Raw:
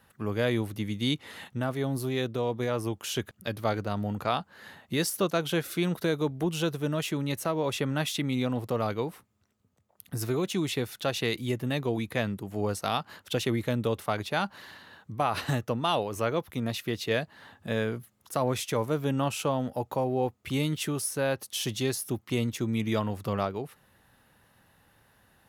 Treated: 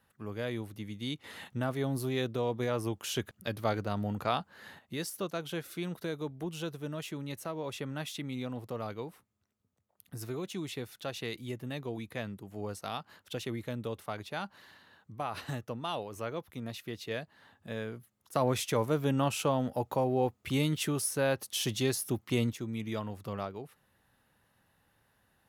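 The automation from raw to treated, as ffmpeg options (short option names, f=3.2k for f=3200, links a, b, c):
-af "asetnsamples=n=441:p=0,asendcmd='1.24 volume volume -2.5dB;4.79 volume volume -9dB;18.35 volume volume -1dB;22.53 volume volume -8dB',volume=-9dB"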